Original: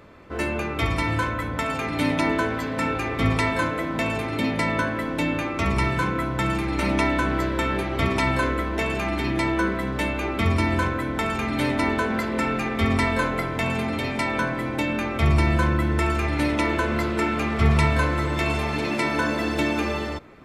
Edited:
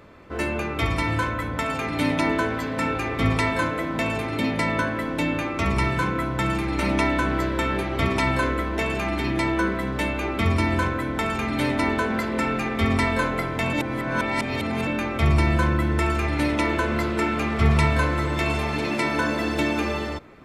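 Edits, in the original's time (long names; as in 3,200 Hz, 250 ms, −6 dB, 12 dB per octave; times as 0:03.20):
0:13.73–0:14.87: reverse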